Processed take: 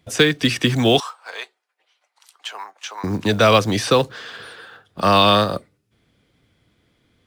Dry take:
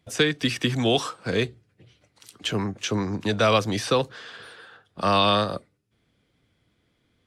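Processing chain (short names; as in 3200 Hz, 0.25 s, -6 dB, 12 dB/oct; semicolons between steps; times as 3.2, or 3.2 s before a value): 1–3.04 ladder high-pass 740 Hz, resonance 50%; short-mantissa float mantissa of 4-bit; gain +6 dB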